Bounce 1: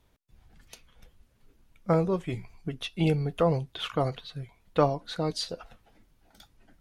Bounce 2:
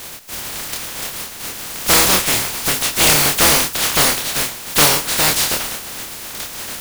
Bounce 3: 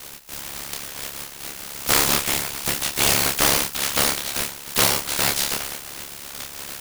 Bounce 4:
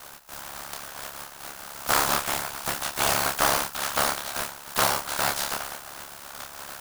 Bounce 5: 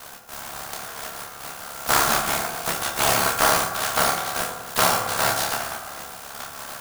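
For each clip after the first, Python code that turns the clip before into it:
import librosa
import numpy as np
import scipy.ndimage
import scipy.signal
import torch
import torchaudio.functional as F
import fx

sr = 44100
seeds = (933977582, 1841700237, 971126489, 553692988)

y1 = fx.spec_flatten(x, sr, power=0.14)
y1 = fx.doubler(y1, sr, ms=27.0, db=-6)
y1 = fx.power_curve(y1, sr, exponent=0.5)
y1 = y1 * librosa.db_to_amplitude(3.0)
y2 = y1 * np.sin(2.0 * np.pi * 35.0 * np.arange(len(y1)) / sr)
y2 = y2 * librosa.db_to_amplitude(-3.0)
y3 = fx.band_shelf(y2, sr, hz=980.0, db=8.5, octaves=1.7)
y3 = y3 * librosa.db_to_amplitude(-7.0)
y4 = fx.rev_fdn(y3, sr, rt60_s=1.5, lf_ratio=1.0, hf_ratio=0.35, size_ms=13.0, drr_db=2.5)
y4 = y4 * librosa.db_to_amplitude(2.5)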